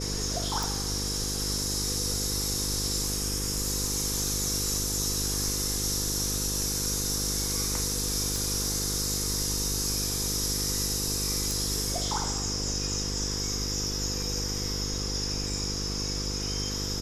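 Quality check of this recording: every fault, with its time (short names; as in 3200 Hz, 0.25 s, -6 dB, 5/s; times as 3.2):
buzz 50 Hz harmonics 10 -34 dBFS
0.63 pop
8.36 pop
11.51 pop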